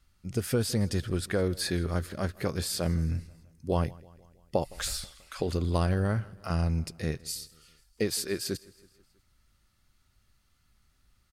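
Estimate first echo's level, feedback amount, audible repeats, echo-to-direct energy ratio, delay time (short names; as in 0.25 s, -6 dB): -23.0 dB, 57%, 3, -21.5 dB, 0.162 s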